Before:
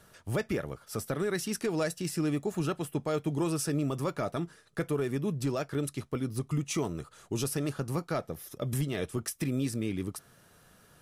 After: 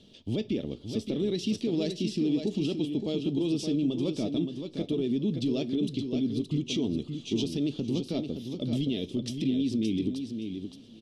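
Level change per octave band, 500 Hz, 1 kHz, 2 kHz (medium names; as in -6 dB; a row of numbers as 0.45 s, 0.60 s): 0.0 dB, under -10 dB, -7.5 dB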